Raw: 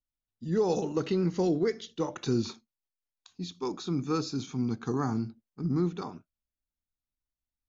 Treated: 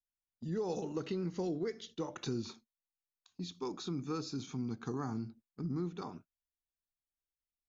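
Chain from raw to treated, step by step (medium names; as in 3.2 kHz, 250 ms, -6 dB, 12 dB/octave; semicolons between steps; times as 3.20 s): gate -51 dBFS, range -8 dB; compression 2:1, threshold -36 dBFS, peak gain reduction 8 dB; trim -2.5 dB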